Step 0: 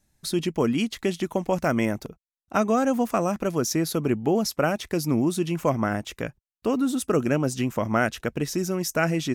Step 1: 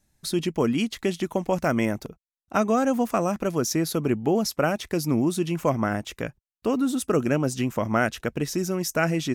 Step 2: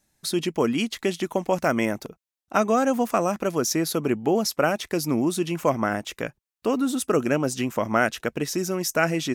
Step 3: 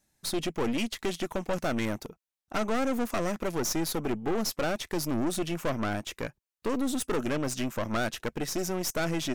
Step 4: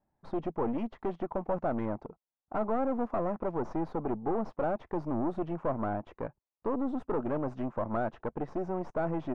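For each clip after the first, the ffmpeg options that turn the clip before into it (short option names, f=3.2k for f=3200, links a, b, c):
-af anull
-af "lowshelf=f=150:g=-11.5,volume=2.5dB"
-af "aeval=exprs='(tanh(17.8*val(0)+0.65)-tanh(0.65))/17.8':c=same"
-af "lowpass=f=910:t=q:w=1.9,volume=-3.5dB"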